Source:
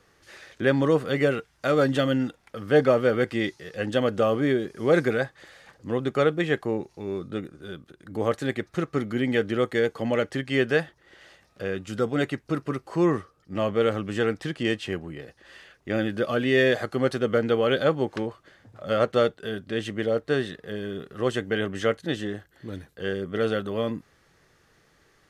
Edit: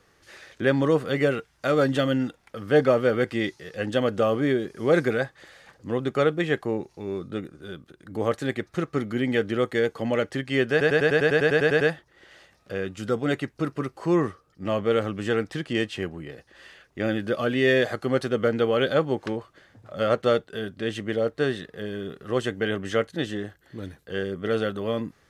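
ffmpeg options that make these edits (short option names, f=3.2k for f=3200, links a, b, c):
-filter_complex "[0:a]asplit=12[a][b][c][d][e][f][g][h][i][j][k][l];[a]atrim=end=10.812[m];[b]atrim=start=10.708:end=10.812[n];[c]atrim=start=10.708:end=10.812[o];[d]atrim=start=10.708:end=10.812[p];[e]atrim=start=10.708:end=10.812[q];[f]atrim=start=10.708:end=10.812[r];[g]atrim=start=10.708:end=10.812[s];[h]atrim=start=10.708:end=10.812[t];[i]atrim=start=10.708:end=10.812[u];[j]atrim=start=10.708:end=10.812[v];[k]atrim=start=10.708:end=10.812[w];[l]atrim=start=10.708[x];[m][n]acrossfade=d=0.004:c1=hsin:c2=hsin[y];[y][o]acrossfade=d=0.004:c1=hsin:c2=hsin[z];[z][p]acrossfade=d=0.004:c1=hsin:c2=hsin[aa];[aa][q]acrossfade=d=0.004:c1=hsin:c2=hsin[ab];[ab][r]acrossfade=d=0.004:c1=hsin:c2=hsin[ac];[ac][s]acrossfade=d=0.004:c1=hsin:c2=hsin[ad];[ad][t]acrossfade=d=0.004:c1=hsin:c2=hsin[ae];[ae][u]acrossfade=d=0.004:c1=hsin:c2=hsin[af];[af][v]acrossfade=d=0.004:c1=hsin:c2=hsin[ag];[ag][w]acrossfade=d=0.004:c1=hsin:c2=hsin[ah];[ah][x]acrossfade=d=0.004:c1=hsin:c2=hsin"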